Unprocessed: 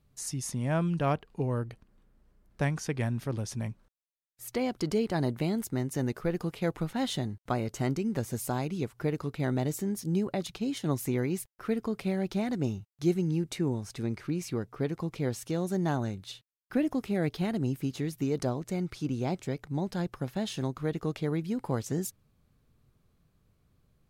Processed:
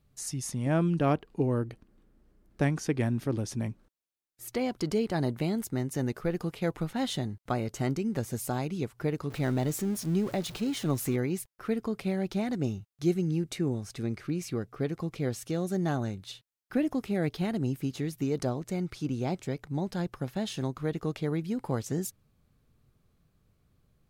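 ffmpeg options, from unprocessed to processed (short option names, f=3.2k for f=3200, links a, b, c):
-filter_complex "[0:a]asettb=1/sr,asplit=3[a][b][c];[a]atrim=end=0.664[d];[b]atrim=start=0.66:end=4.53,asetpts=PTS-STARTPTS,afade=t=in:d=0.004:c=qsin,afade=t=out:st=3.866:d=0.004:c=qsin,equalizer=f=310:w=1.5:g=7.5[e];[c]atrim=start=4.526[f];[d][e]acrossfade=d=0.004:c1=hsin:c2=qsin[g];[g][f]acrossfade=d=0.004:c1=qsin:c2=hsin,asettb=1/sr,asplit=3[h][i][j];[h]atrim=end=9.304[k];[i]atrim=start=9.3:end=11.16,asetpts=PTS-STARTPTS,afade=t=in:d=0.004:c=qsin,afade=t=out:st=1.856:d=0.004:c=qsin,aeval=exprs='val(0)+0.5*0.0106*sgn(val(0))':c=same[l];[j]atrim=start=11.156[m];[k][l]acrossfade=d=0.004:c1=hsin:c2=qsin[n];[n][m]acrossfade=d=0.004:c1=qsin:c2=hsin,asettb=1/sr,asplit=3[o][p][q];[o]atrim=end=12.554[r];[p]atrim=start=12.55:end=16.02,asetpts=PTS-STARTPTS,afade=t=in:d=0.004:c=qsin,afade=t=out:st=3.466:d=0.004:c=qsin,bandreject=f=920:w=8.3[s];[q]atrim=start=16.016[t];[r][s]acrossfade=d=0.004:c1=hsin:c2=qsin[u];[u][t]acrossfade=d=0.004:c1=qsin:c2=hsin,bandreject=f=990:w=27"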